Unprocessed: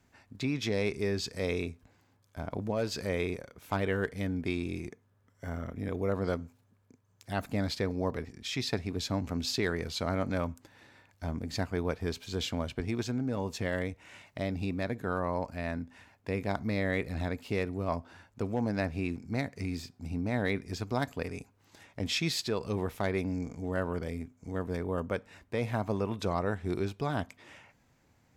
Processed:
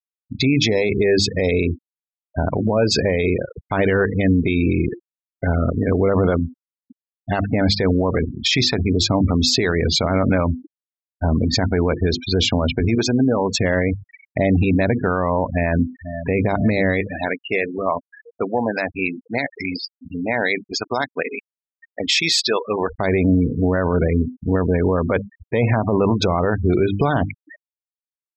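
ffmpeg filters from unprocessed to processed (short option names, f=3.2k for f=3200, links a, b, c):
-filter_complex "[0:a]asettb=1/sr,asplit=3[a][b][c];[a]atrim=end=12.954[d];[b]atrim=start=12.95:end=13.56,asetpts=PTS-STARTPTS,afade=t=in:d=0.004:c=qsin,afade=t=out:st=0.606:d=0.004:c=qsin,lowshelf=f=150:g=-12[e];[c]atrim=start=13.556[f];[d][e]acrossfade=d=0.004:c1=hsin:c2=qsin[g];[g][f]acrossfade=d=0.004:c1=qsin:c2=hsin,asplit=2[h][i];[i]afade=t=in:st=15.52:d=0.01,afade=t=out:st=16.34:d=0.01,aecho=0:1:490|980|1470|1960|2450|2940|3430|3920|4410|4900|5390|5880:0.237137|0.201567|0.171332|0.145632|0.123787|0.105219|0.0894362|0.0760208|0.0646177|0.054925|0.0466863|0.0396833[j];[h][j]amix=inputs=2:normalize=0,asplit=3[k][l][m];[k]afade=t=out:st=17:d=0.02[n];[l]highpass=f=960:p=1,afade=t=in:st=17:d=0.02,afade=t=out:st=22.89:d=0.02[o];[m]afade=t=in:st=22.89:d=0.02[p];[n][o][p]amix=inputs=3:normalize=0,bandreject=f=50:t=h:w=6,bandreject=f=100:t=h:w=6,bandreject=f=150:t=h:w=6,bandreject=f=200:t=h:w=6,bandreject=f=250:t=h:w=6,bandreject=f=300:t=h:w=6,bandreject=f=350:t=h:w=6,afftfilt=real='re*gte(hypot(re,im),0.0126)':imag='im*gte(hypot(re,im),0.0126)':win_size=1024:overlap=0.75,alimiter=level_in=28.5dB:limit=-1dB:release=50:level=0:latency=1,volume=-7.5dB"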